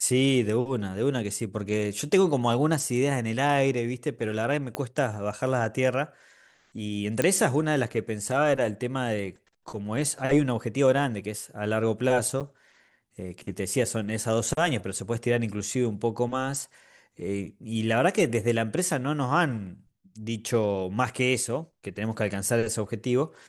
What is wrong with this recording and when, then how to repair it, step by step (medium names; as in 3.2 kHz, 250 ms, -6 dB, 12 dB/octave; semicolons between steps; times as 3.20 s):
4.75 s: pop -14 dBFS
7.22 s: pop -11 dBFS
12.40–12.41 s: dropout 7.7 ms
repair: de-click; interpolate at 12.40 s, 7.7 ms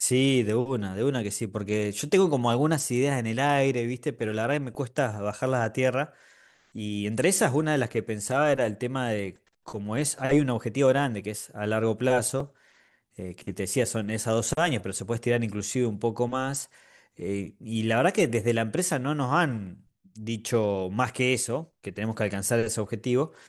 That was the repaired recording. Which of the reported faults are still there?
4.75 s: pop